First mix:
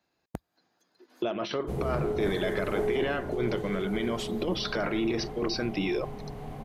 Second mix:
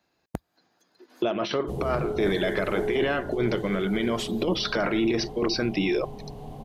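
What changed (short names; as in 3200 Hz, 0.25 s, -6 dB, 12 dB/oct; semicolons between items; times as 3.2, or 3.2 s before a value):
speech +4.5 dB; background: add band shelf 1700 Hz -9.5 dB 1.2 oct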